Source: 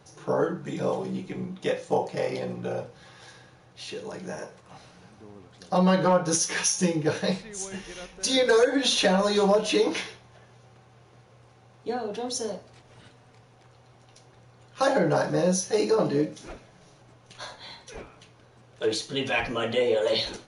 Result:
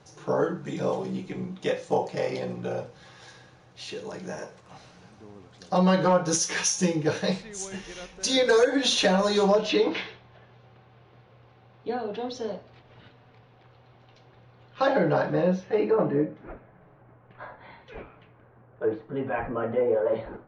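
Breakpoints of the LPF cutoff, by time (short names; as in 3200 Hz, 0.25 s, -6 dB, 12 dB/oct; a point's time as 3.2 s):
LPF 24 dB/oct
9.41 s 8700 Hz
9.84 s 4000 Hz
15.12 s 4000 Hz
16.25 s 1900 Hz
17.6 s 1900 Hz
17.92 s 3100 Hz
18.83 s 1500 Hz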